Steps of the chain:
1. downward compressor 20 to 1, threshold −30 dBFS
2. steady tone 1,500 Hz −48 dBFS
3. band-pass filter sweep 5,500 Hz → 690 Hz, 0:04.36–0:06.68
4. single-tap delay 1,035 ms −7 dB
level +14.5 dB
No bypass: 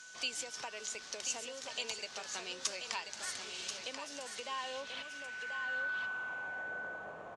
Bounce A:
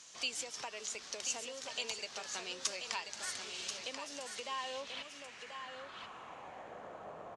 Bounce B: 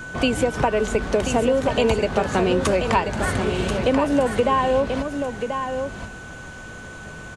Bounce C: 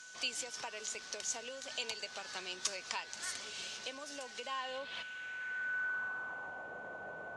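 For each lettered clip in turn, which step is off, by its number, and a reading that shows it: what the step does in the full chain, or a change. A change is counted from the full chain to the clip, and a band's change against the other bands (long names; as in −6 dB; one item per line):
2, 2 kHz band −7.5 dB
3, 125 Hz band +22.5 dB
4, change in momentary loudness spread +1 LU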